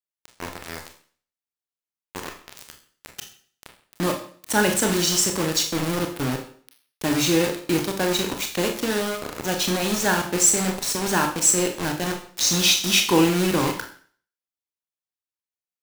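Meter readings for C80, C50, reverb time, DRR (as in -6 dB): 13.0 dB, 9.0 dB, 0.50 s, 3.5 dB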